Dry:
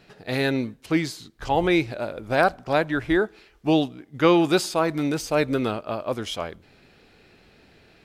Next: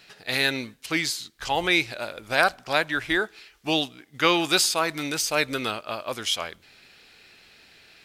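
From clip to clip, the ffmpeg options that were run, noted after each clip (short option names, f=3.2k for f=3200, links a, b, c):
-af "tiltshelf=f=1.1k:g=-9"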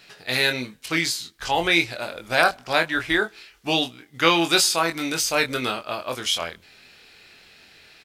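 -filter_complex "[0:a]asplit=2[a][b];[b]adelay=24,volume=-6dB[c];[a][c]amix=inputs=2:normalize=0,volume=1.5dB"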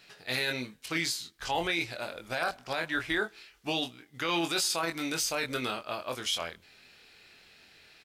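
-af "alimiter=limit=-13dB:level=0:latency=1:release=12,volume=-6.5dB"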